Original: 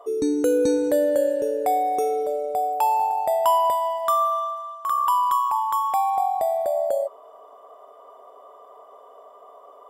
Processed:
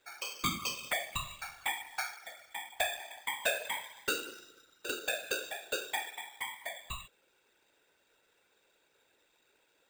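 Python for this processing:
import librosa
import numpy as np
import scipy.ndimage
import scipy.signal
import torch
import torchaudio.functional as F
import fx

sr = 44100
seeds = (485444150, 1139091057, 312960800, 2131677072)

y = scipy.signal.sosfilt(scipy.signal.cheby2(4, 60, 2200.0, 'highpass', fs=sr, output='sos'), x)
y = fx.whisperise(y, sr, seeds[0])
y = np.repeat(y[::4], 4)[:len(y)]
y = y * librosa.db_to_amplitude(8.0)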